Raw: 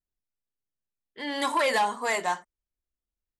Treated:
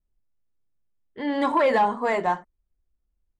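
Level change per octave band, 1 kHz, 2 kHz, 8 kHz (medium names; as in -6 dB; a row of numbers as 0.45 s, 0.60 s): +4.0 dB, -1.0 dB, under -10 dB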